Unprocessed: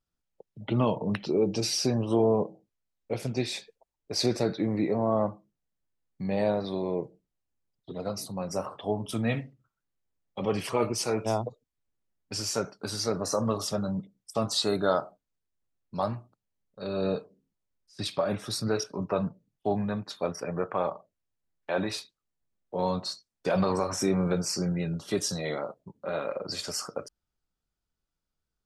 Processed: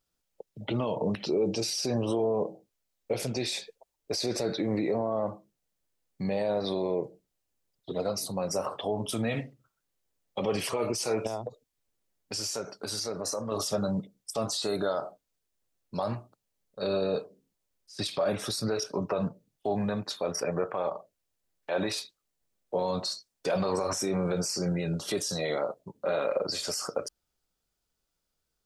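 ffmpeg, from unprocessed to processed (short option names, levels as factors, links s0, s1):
-filter_complex "[0:a]asettb=1/sr,asplit=3[s0][s1][s2];[s0]atrim=end=11.274[s3];[s1]atrim=start=11.27:end=13.52,asetpts=PTS-STARTPTS,afade=t=in:d=0.004:c=qsin,afade=t=out:st=2.246:d=0.004:c=qsin,acompressor=threshold=0.0126:ratio=3:attack=3.2:release=140:knee=1:detection=peak[s4];[s2]atrim=start=13.516[s5];[s3][s4]acrossfade=d=0.004:c1=hsin:c2=qsin[s6];[s6][s5]acrossfade=d=0.004:c1=qsin:c2=hsin,highshelf=f=2100:g=9.5,alimiter=limit=0.0668:level=0:latency=1:release=72,equalizer=f=520:w=0.9:g=6.5"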